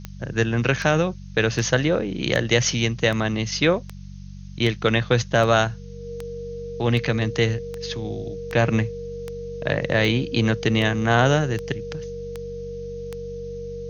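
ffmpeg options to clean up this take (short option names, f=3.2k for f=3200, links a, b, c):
-af "adeclick=t=4,bandreject=f=47.6:t=h:w=4,bandreject=f=95.2:t=h:w=4,bandreject=f=142.8:t=h:w=4,bandreject=f=190.4:t=h:w=4,bandreject=f=470:w=30,afftdn=nr=29:nf=-38"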